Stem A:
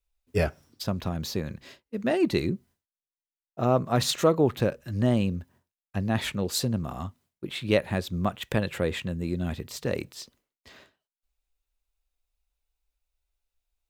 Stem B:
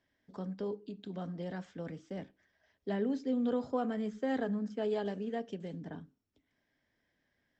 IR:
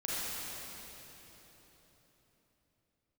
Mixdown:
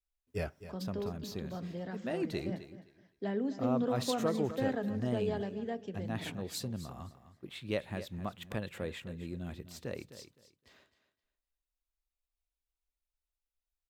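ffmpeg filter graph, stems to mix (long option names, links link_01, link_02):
-filter_complex "[0:a]volume=-11.5dB,asplit=2[link_01][link_02];[link_02]volume=-13.5dB[link_03];[1:a]bandreject=frequency=3100:width=29,adelay=350,volume=-1dB,asplit=2[link_04][link_05];[link_05]volume=-15dB[link_06];[link_03][link_06]amix=inputs=2:normalize=0,aecho=0:1:258|516|774:1|0.2|0.04[link_07];[link_01][link_04][link_07]amix=inputs=3:normalize=0"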